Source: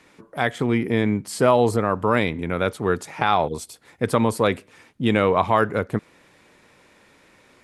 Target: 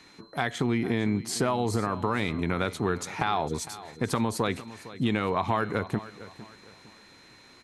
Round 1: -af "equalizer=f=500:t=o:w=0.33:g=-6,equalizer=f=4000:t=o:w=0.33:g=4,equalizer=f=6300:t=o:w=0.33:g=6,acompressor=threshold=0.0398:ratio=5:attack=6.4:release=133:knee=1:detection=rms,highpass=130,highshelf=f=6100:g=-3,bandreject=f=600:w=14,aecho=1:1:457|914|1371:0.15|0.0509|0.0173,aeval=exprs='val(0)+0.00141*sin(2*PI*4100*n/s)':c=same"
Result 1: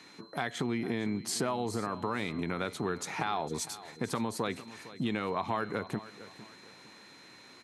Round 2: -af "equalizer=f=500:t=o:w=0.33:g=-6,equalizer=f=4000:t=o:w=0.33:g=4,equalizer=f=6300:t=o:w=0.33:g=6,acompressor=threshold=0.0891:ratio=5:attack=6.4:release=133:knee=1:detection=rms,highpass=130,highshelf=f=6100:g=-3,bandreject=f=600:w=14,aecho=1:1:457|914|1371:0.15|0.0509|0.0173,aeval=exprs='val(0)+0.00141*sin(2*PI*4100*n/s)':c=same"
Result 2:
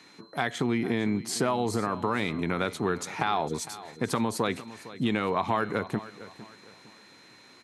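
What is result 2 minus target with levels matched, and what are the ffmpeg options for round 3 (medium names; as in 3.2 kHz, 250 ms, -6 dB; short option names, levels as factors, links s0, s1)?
125 Hz band -3.0 dB
-af "equalizer=f=500:t=o:w=0.33:g=-6,equalizer=f=4000:t=o:w=0.33:g=4,equalizer=f=6300:t=o:w=0.33:g=6,acompressor=threshold=0.0891:ratio=5:attack=6.4:release=133:knee=1:detection=rms,highshelf=f=6100:g=-3,bandreject=f=600:w=14,aecho=1:1:457|914|1371:0.15|0.0509|0.0173,aeval=exprs='val(0)+0.00141*sin(2*PI*4100*n/s)':c=same"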